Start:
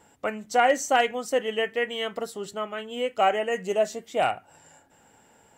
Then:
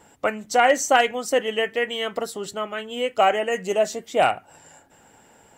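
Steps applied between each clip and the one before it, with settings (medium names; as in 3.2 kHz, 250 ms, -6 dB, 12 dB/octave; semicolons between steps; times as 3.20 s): harmonic-percussive split percussive +4 dB; trim +2.5 dB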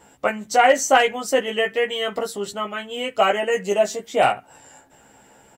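doubling 15 ms -3 dB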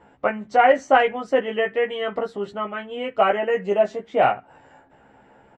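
low-pass 2 kHz 12 dB/octave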